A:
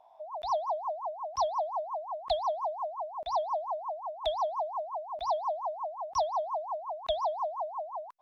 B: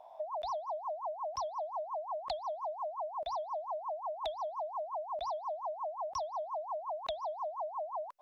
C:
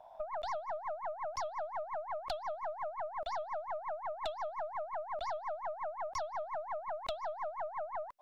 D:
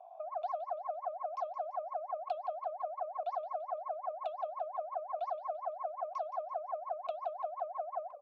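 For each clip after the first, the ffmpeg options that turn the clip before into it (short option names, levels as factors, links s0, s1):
-af "equalizer=f=570:t=o:w=0.34:g=8,acompressor=threshold=0.0112:ratio=10,volume=1.5"
-af "aeval=exprs='(tanh(31.6*val(0)+0.75)-tanh(0.75))/31.6':c=same,volume=1.41"
-filter_complex "[0:a]asplit=3[s0][s1][s2];[s0]bandpass=f=730:t=q:w=8,volume=1[s3];[s1]bandpass=f=1090:t=q:w=8,volume=0.501[s4];[s2]bandpass=f=2440:t=q:w=8,volume=0.355[s5];[s3][s4][s5]amix=inputs=3:normalize=0,bandreject=f=60:t=h:w=6,bandreject=f=120:t=h:w=6,bandreject=f=180:t=h:w=6,bandreject=f=240:t=h:w=6,bandreject=f=300:t=h:w=6,bandreject=f=360:t=h:w=6,bandreject=f=420:t=h:w=6,bandreject=f=480:t=h:w=6,bandreject=f=540:t=h:w=6,bandreject=f=600:t=h:w=6,asplit=6[s6][s7][s8][s9][s10][s11];[s7]adelay=170,afreqshift=-34,volume=0.224[s12];[s8]adelay=340,afreqshift=-68,volume=0.105[s13];[s9]adelay=510,afreqshift=-102,volume=0.0495[s14];[s10]adelay=680,afreqshift=-136,volume=0.0232[s15];[s11]adelay=850,afreqshift=-170,volume=0.011[s16];[s6][s12][s13][s14][s15][s16]amix=inputs=6:normalize=0,volume=2"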